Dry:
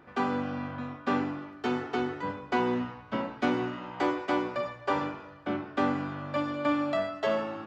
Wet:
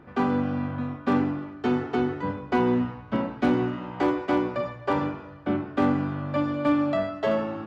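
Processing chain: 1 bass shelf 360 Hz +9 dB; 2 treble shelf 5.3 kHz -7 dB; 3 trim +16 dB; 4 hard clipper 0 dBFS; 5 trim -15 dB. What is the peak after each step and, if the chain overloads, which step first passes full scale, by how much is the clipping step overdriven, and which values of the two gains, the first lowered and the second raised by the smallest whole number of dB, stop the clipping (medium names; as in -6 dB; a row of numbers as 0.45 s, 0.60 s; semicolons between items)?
-11.5 dBFS, -11.5 dBFS, +4.5 dBFS, 0.0 dBFS, -15.0 dBFS; step 3, 4.5 dB; step 3 +11 dB, step 5 -10 dB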